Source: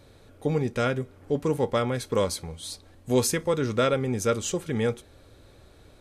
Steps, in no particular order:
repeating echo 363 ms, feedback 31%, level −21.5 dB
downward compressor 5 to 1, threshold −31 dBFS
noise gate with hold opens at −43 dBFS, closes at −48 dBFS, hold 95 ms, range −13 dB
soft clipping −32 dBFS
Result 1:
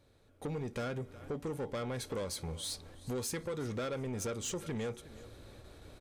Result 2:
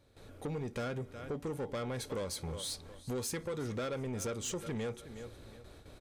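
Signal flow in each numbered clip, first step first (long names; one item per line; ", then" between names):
downward compressor, then repeating echo, then soft clipping, then noise gate with hold
noise gate with hold, then repeating echo, then downward compressor, then soft clipping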